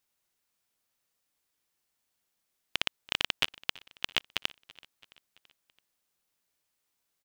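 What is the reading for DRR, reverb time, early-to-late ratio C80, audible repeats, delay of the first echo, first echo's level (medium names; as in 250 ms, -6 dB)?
no reverb, no reverb, no reverb, 3, 333 ms, -22.5 dB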